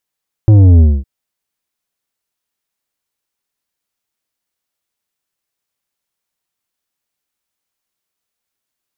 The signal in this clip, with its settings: sub drop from 110 Hz, over 0.56 s, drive 9 dB, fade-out 0.24 s, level -4 dB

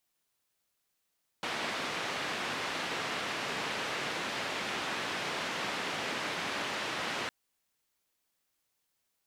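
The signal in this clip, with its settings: noise band 160–2700 Hz, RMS -35.5 dBFS 5.86 s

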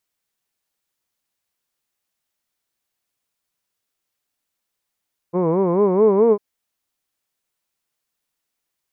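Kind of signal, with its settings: formant-synthesis vowel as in hood, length 1.05 s, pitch 167 Hz, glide +5 st, vibrato 4.6 Hz, vibrato depth 1.5 st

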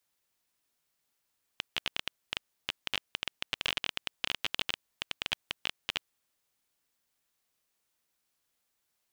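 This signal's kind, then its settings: random clicks 15 per s -12.5 dBFS 4.58 s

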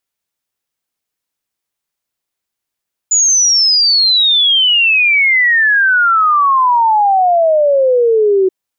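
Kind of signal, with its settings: log sweep 7 kHz -> 370 Hz 5.38 s -7.5 dBFS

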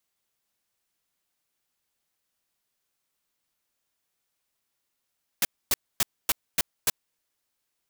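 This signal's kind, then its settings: noise bursts white, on 0.03 s, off 0.26 s, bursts 6, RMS -22 dBFS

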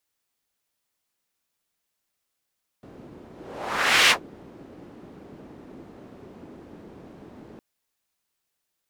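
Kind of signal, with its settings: whoosh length 4.76 s, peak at 1.27 s, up 0.83 s, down 0.11 s, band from 300 Hz, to 2.6 kHz, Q 1.3, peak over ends 29 dB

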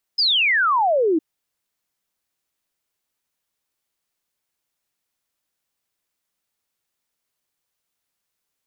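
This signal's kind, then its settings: log sweep 5.2 kHz -> 300 Hz 1.01 s -15 dBFS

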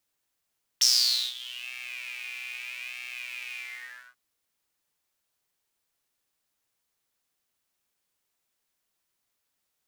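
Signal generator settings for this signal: synth patch with pulse-width modulation B2, noise -20 dB, filter highpass, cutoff 1.4 kHz, Q 11, filter envelope 2 oct, filter decay 0.92 s, attack 10 ms, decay 0.51 s, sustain -22.5 dB, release 0.58 s, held 2.76 s, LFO 0.79 Hz, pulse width 32%, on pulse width 7%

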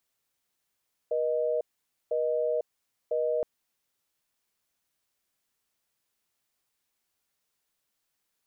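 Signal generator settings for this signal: call progress tone busy tone, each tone -27.5 dBFS 2.32 s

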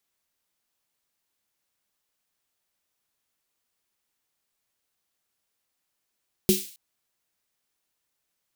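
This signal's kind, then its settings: snare drum length 0.27 s, tones 200 Hz, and 370 Hz, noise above 2.7 kHz, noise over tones -6 dB, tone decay 0.21 s, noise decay 0.50 s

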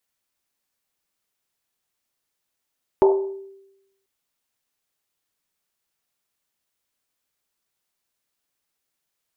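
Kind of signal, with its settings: Risset drum length 1.04 s, pitch 390 Hz, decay 0.94 s, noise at 700 Hz, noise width 550 Hz, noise 15%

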